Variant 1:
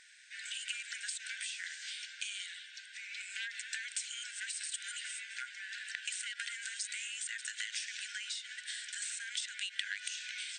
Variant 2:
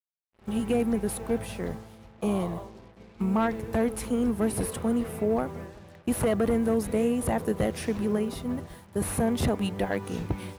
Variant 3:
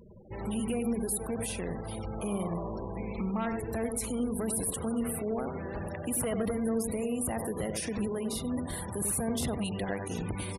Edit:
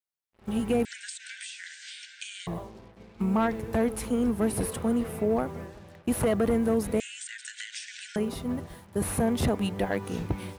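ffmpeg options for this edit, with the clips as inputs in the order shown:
-filter_complex "[0:a]asplit=2[a][b];[1:a]asplit=3[c][d][e];[c]atrim=end=0.852[f];[a]atrim=start=0.848:end=2.472[g];[d]atrim=start=2.468:end=7.002[h];[b]atrim=start=6.998:end=8.162[i];[e]atrim=start=8.158[j];[f][g]acrossfade=d=0.004:c1=hsin:c2=hsin[k];[k][h]acrossfade=d=0.004:c1=hsin:c2=hsin[l];[l][i]acrossfade=d=0.004:c1=hsin:c2=hsin[m];[m][j]acrossfade=d=0.004:c1=hsin:c2=hsin"

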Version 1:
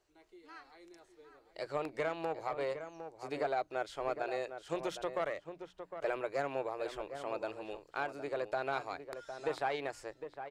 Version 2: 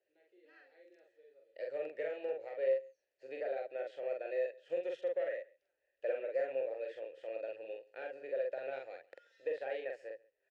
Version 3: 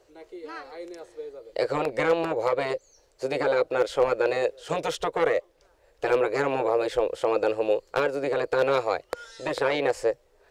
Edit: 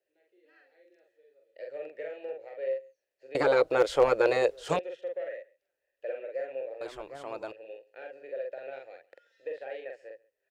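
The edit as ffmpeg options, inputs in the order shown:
-filter_complex "[1:a]asplit=3[a][b][c];[a]atrim=end=3.352[d];[2:a]atrim=start=3.348:end=4.792[e];[b]atrim=start=4.788:end=6.812[f];[0:a]atrim=start=6.808:end=7.522[g];[c]atrim=start=7.518[h];[d][e]acrossfade=d=0.004:c1=hsin:c2=hsin[i];[i][f]acrossfade=d=0.004:c1=hsin:c2=hsin[j];[j][g]acrossfade=d=0.004:c1=hsin:c2=hsin[k];[k][h]acrossfade=d=0.004:c1=hsin:c2=hsin"

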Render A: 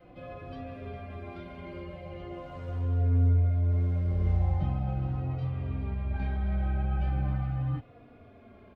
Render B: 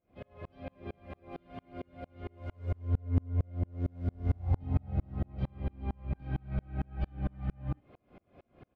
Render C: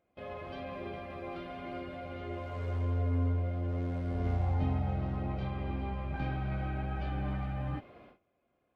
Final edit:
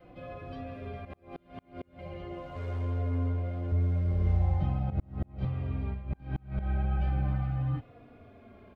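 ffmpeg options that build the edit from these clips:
-filter_complex "[1:a]asplit=3[a][b][c];[0:a]asplit=5[d][e][f][g][h];[d]atrim=end=1.052[i];[a]atrim=start=1.048:end=1.992[j];[e]atrim=start=1.988:end=2.562[k];[2:a]atrim=start=2.558:end=3.722[l];[f]atrim=start=3.718:end=4.902[m];[b]atrim=start=4.898:end=5.452[n];[g]atrim=start=5.448:end=6.06[o];[c]atrim=start=5.9:end=6.71[p];[h]atrim=start=6.55[q];[i][j]acrossfade=d=0.004:c1=hsin:c2=hsin[r];[r][k]acrossfade=d=0.004:c1=hsin:c2=hsin[s];[s][l]acrossfade=d=0.004:c1=hsin:c2=hsin[t];[t][m]acrossfade=d=0.004:c1=hsin:c2=hsin[u];[u][n]acrossfade=d=0.004:c1=hsin:c2=hsin[v];[v][o]acrossfade=d=0.004:c1=hsin:c2=hsin[w];[w][p]acrossfade=d=0.16:c1=tri:c2=tri[x];[x][q]acrossfade=d=0.16:c1=tri:c2=tri"

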